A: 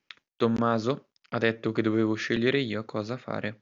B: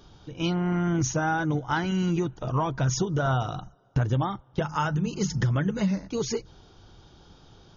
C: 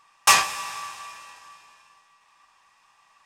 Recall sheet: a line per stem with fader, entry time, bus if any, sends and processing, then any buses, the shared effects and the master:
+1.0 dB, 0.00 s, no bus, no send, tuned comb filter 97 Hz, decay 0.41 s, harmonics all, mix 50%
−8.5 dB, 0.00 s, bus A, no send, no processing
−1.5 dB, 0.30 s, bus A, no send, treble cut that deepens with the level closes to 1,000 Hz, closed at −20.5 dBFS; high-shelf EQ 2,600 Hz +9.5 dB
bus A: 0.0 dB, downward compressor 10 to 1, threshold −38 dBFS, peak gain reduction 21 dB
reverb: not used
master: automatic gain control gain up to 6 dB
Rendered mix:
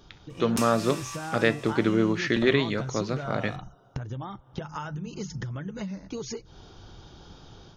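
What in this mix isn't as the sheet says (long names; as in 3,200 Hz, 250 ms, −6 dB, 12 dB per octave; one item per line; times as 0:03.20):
stem B −8.5 dB → −1.5 dB
stem C: missing treble cut that deepens with the level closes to 1,000 Hz, closed at −20.5 dBFS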